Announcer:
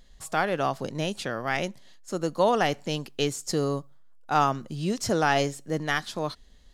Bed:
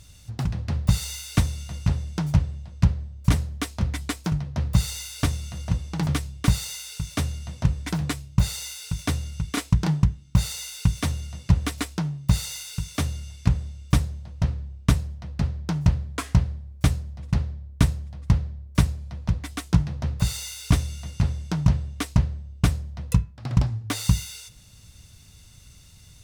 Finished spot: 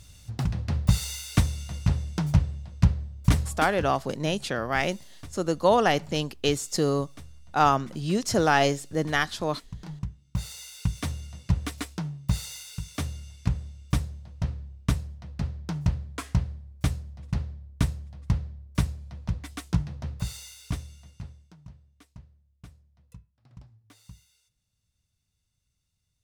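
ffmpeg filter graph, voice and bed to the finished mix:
-filter_complex "[0:a]adelay=3250,volume=1.26[s0];[1:a]volume=5.01,afade=t=out:st=3.45:d=0.52:silence=0.105925,afade=t=in:st=9.74:d=1.22:silence=0.177828,afade=t=out:st=19.7:d=1.86:silence=0.0749894[s1];[s0][s1]amix=inputs=2:normalize=0"

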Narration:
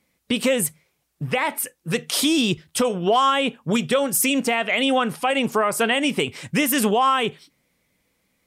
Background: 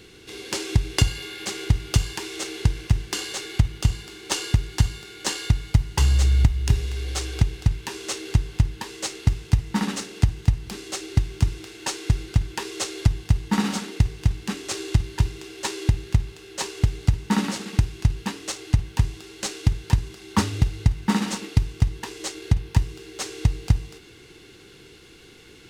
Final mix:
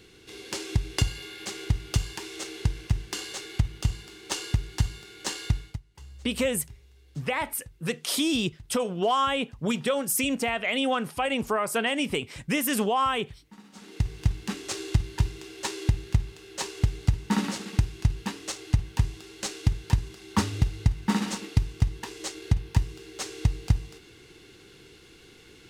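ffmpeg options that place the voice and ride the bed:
-filter_complex "[0:a]adelay=5950,volume=0.501[s0];[1:a]volume=8.91,afade=t=out:st=5.55:d=0.25:silence=0.0749894,afade=t=in:st=13.72:d=0.45:silence=0.0595662[s1];[s0][s1]amix=inputs=2:normalize=0"

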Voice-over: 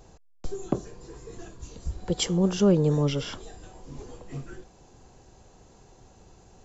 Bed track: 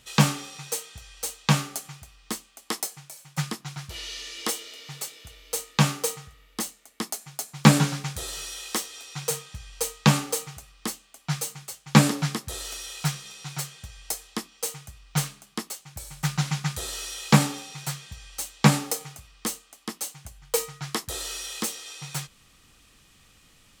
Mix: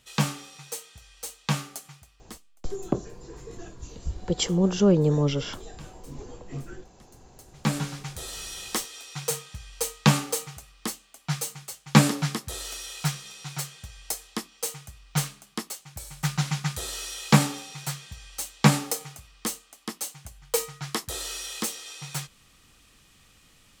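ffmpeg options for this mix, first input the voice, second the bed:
-filter_complex "[0:a]adelay=2200,volume=1.12[s0];[1:a]volume=11.2,afade=t=out:st=1.91:d=0.72:silence=0.0841395,afade=t=in:st=7.32:d=1.28:silence=0.0473151[s1];[s0][s1]amix=inputs=2:normalize=0"

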